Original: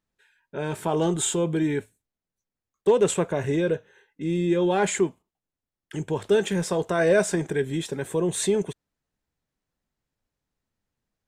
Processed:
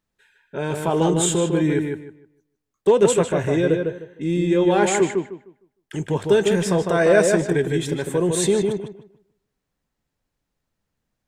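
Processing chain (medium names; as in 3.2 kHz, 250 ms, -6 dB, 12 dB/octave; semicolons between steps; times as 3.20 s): filtered feedback delay 153 ms, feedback 25%, low-pass 3 kHz, level -4 dB; trim +3.5 dB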